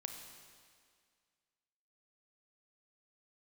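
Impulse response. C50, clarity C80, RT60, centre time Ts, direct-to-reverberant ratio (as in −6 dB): 5.5 dB, 6.5 dB, 2.0 s, 45 ms, 4.5 dB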